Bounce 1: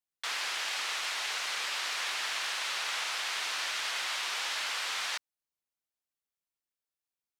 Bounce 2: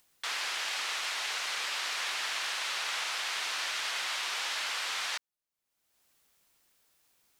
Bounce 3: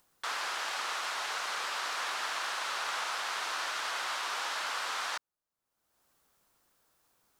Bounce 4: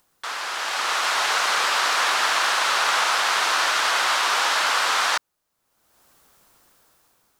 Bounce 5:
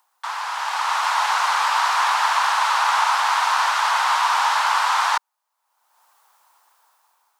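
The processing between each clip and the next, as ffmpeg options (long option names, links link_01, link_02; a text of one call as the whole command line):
ffmpeg -i in.wav -af "acompressor=mode=upward:threshold=-51dB:ratio=2.5" out.wav
ffmpeg -i in.wav -af "highshelf=frequency=1700:width_type=q:width=1.5:gain=-6,volume=3dB" out.wav
ffmpeg -i in.wav -af "dynaudnorm=framelen=230:gausssize=7:maxgain=9.5dB,volume=4.5dB" out.wav
ffmpeg -i in.wav -af "highpass=frequency=910:width_type=q:width=4.5,volume=-4dB" out.wav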